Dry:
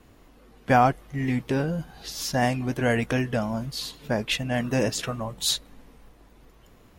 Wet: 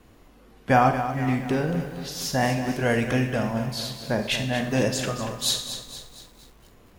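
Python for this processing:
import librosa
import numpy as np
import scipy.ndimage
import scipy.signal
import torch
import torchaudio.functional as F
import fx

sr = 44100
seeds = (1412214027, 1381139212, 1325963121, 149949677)

y = fx.rev_schroeder(x, sr, rt60_s=0.63, comb_ms=31, drr_db=7.0)
y = fx.echo_crushed(y, sr, ms=233, feedback_pct=55, bits=8, wet_db=-10)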